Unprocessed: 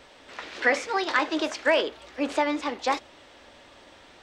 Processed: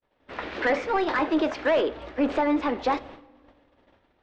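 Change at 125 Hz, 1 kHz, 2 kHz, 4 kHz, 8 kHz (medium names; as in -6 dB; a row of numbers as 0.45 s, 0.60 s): no reading, +0.5 dB, -3.5 dB, -5.5 dB, under -10 dB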